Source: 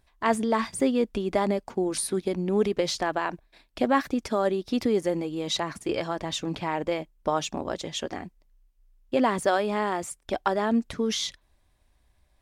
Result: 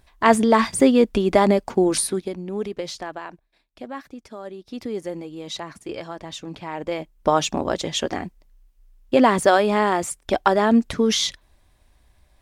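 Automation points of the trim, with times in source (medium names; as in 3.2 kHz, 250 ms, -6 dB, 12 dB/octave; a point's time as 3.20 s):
1.94 s +8.5 dB
2.39 s -4 dB
2.92 s -4 dB
3.81 s -11.5 dB
4.43 s -11.5 dB
4.99 s -4 dB
6.64 s -4 dB
7.28 s +7.5 dB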